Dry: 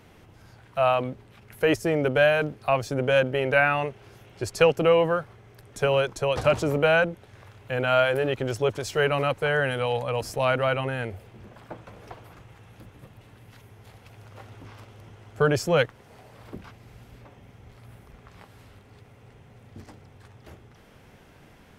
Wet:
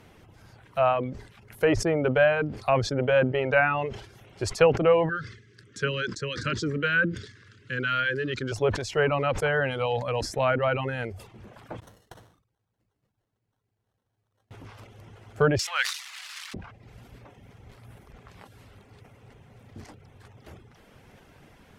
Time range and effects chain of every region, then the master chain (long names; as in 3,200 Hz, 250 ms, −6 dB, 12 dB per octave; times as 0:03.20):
0:05.09–0:08.52: Butterworth band-reject 760 Hz, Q 0.7 + loudspeaker in its box 120–8,000 Hz, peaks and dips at 1,600 Hz +7 dB, 2,400 Hz −5 dB, 4,700 Hz +5 dB
0:11.80–0:14.51: high-shelf EQ 4,200 Hz −10.5 dB + sample-rate reduction 2,400 Hz + noise gate −39 dBFS, range −29 dB
0:15.59–0:16.54: spike at every zero crossing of −21 dBFS + high-pass filter 1,100 Hz 24 dB per octave + high-shelf EQ 2,700 Hz +10 dB
whole clip: reverb reduction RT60 0.51 s; treble cut that deepens with the level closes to 2,300 Hz, closed at −19.5 dBFS; level that may fall only so fast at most 94 dB per second